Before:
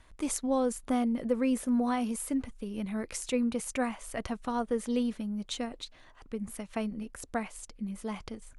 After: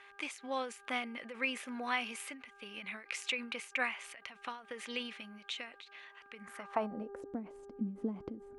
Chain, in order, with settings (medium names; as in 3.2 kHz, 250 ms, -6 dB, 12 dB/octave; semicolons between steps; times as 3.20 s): mains buzz 400 Hz, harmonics 4, -56 dBFS -5 dB/octave; band-pass sweep 2.4 kHz -> 280 Hz, 6.34–7.35 s; endings held to a fixed fall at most 120 dB/s; trim +11.5 dB